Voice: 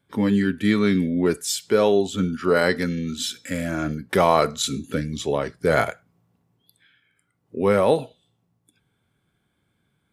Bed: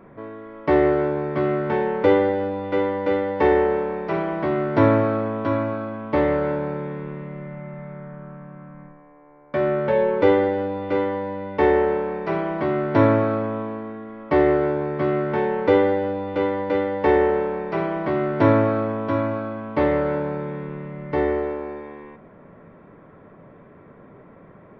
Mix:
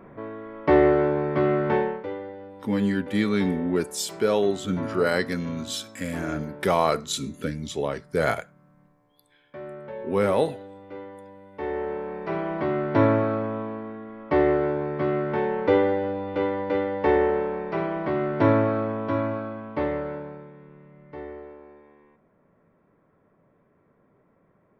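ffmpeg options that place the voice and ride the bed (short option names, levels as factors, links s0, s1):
-filter_complex "[0:a]adelay=2500,volume=0.631[s0];[1:a]volume=5.01,afade=t=out:st=1.76:d=0.28:silence=0.141254,afade=t=in:st=11.52:d=1.02:silence=0.199526,afade=t=out:st=19.3:d=1.22:silence=0.211349[s1];[s0][s1]amix=inputs=2:normalize=0"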